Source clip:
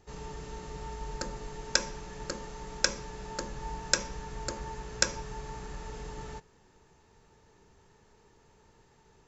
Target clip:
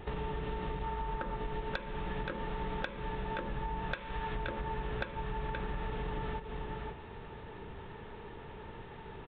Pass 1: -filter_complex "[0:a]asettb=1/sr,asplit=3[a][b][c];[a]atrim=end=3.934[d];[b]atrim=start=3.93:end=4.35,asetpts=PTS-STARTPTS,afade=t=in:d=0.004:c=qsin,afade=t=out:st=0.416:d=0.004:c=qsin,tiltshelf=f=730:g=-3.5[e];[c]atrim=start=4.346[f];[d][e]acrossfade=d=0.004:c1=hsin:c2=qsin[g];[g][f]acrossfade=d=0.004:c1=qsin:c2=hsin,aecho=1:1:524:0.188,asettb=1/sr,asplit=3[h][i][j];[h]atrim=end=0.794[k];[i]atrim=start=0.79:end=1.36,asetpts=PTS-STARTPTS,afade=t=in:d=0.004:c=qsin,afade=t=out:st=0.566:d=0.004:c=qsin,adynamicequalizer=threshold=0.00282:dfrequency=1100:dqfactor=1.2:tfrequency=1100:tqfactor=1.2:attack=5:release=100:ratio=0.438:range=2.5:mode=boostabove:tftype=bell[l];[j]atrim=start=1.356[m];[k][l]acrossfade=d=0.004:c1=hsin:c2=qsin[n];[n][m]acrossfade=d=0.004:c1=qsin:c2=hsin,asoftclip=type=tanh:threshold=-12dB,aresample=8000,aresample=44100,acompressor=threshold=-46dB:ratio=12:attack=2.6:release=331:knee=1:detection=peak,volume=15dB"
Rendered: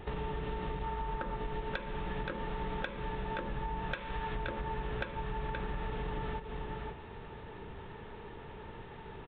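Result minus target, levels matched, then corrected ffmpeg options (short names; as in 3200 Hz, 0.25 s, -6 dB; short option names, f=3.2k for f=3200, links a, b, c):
soft clip: distortion +12 dB
-filter_complex "[0:a]asettb=1/sr,asplit=3[a][b][c];[a]atrim=end=3.934[d];[b]atrim=start=3.93:end=4.35,asetpts=PTS-STARTPTS,afade=t=in:d=0.004:c=qsin,afade=t=out:st=0.416:d=0.004:c=qsin,tiltshelf=f=730:g=-3.5[e];[c]atrim=start=4.346[f];[d][e]acrossfade=d=0.004:c1=hsin:c2=qsin[g];[g][f]acrossfade=d=0.004:c1=qsin:c2=hsin,aecho=1:1:524:0.188,asettb=1/sr,asplit=3[h][i][j];[h]atrim=end=0.794[k];[i]atrim=start=0.79:end=1.36,asetpts=PTS-STARTPTS,afade=t=in:d=0.004:c=qsin,afade=t=out:st=0.566:d=0.004:c=qsin,adynamicequalizer=threshold=0.00282:dfrequency=1100:dqfactor=1.2:tfrequency=1100:tqfactor=1.2:attack=5:release=100:ratio=0.438:range=2.5:mode=boostabove:tftype=bell[l];[j]atrim=start=1.356[m];[k][l]acrossfade=d=0.004:c1=hsin:c2=qsin[n];[n][m]acrossfade=d=0.004:c1=qsin:c2=hsin,asoftclip=type=tanh:threshold=-2.5dB,aresample=8000,aresample=44100,acompressor=threshold=-46dB:ratio=12:attack=2.6:release=331:knee=1:detection=peak,volume=15dB"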